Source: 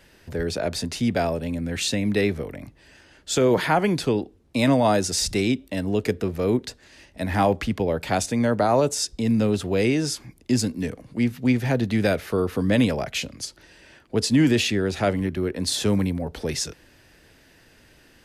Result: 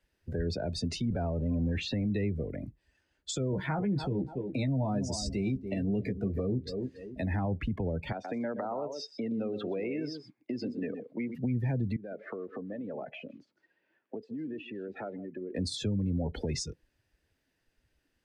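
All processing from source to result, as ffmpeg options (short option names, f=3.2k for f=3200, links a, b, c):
-filter_complex "[0:a]asettb=1/sr,asplit=3[a][b][c];[a]atrim=end=1.054[d];[b]atrim=start=1.05:end=2.1,asetpts=PTS-STARTPTS,afade=t=in:d=0.004:c=qsin,afade=t=out:st=1.046:d=0.004:c=qsin,aeval=exprs='val(0)+0.5*0.0376*sgn(val(0))':c=same,lowpass=f=1.3k:p=1,equalizer=f=380:w=0.32:g=-3.5[e];[c]atrim=start=2.096[f];[d][e]acrossfade=d=0.004:c1=hsin:c2=qsin[g];[g][f]acrossfade=d=0.004:c1=qsin:c2=hsin,asettb=1/sr,asplit=3[h][i][j];[h]atrim=end=3.514[k];[i]atrim=start=3.51:end=7.22,asetpts=PTS-STARTPTS,afade=t=in:d=0.004:c=qsin,afade=t=out:st=3.706:d=0.004:c=qsin,asplit=2[l][m];[m]adelay=15,volume=-5.5dB[n];[l][n]amix=inputs=2:normalize=0,atrim=end_sample=163611,asplit=2[o][p];[p]adelay=284,lowpass=f=3.3k:p=1,volume=-13dB,asplit=2[q][r];[r]adelay=284,lowpass=f=3.3k:p=1,volume=0.3,asplit=2[s][t];[t]adelay=284,lowpass=f=3.3k:p=1,volume=0.3[u];[o][q][s][u]amix=inputs=4:normalize=0,atrim=end_sample=163611[v];[j]atrim=start=7.216[w];[k][v]acrossfade=d=0.004:c1=hsin:c2=qsin[x];[x][w]acrossfade=d=0.004:c1=qsin:c2=hsin,asettb=1/sr,asplit=3[y][z][aa];[y]atrim=end=8.124[ab];[z]atrim=start=8.12:end=11.35,asetpts=PTS-STARTPTS,afade=t=in:d=0.004:c=qsin,afade=t=out:st=3.226:d=0.004:c=qsin,acompressor=threshold=-24dB:ratio=6:attack=3.2:release=140:knee=1:detection=peak,highpass=280,lowpass=3.4k,aecho=1:1:124:0.422,atrim=end_sample=142443[ac];[aa]atrim=start=11.346[ad];[ab][ac]acrossfade=d=0.004:c1=hsin:c2=qsin[ae];[ae][ad]acrossfade=d=0.004:c1=qsin:c2=hsin,asettb=1/sr,asplit=3[af][ag][ah];[af]atrim=end=11.964[ai];[ag]atrim=start=11.96:end=15.53,asetpts=PTS-STARTPTS,afade=t=in:d=0.004:c=qsin,afade=t=out:st=3.566:d=0.004:c=qsin,acompressor=threshold=-32dB:ratio=12:attack=3.2:release=140:knee=1:detection=peak,highpass=230,lowpass=2.3k,aecho=1:1:156:0.224,atrim=end_sample=157437[aj];[ah]atrim=start=15.526[ak];[ai][aj]acrossfade=d=0.004:c1=hsin:c2=qsin[al];[al][ak]acrossfade=d=0.004:c1=qsin:c2=hsin,acrossover=split=190[am][an];[an]acompressor=threshold=-31dB:ratio=8[ao];[am][ao]amix=inputs=2:normalize=0,alimiter=limit=-23dB:level=0:latency=1:release=59,afftdn=nr=24:nf=-38"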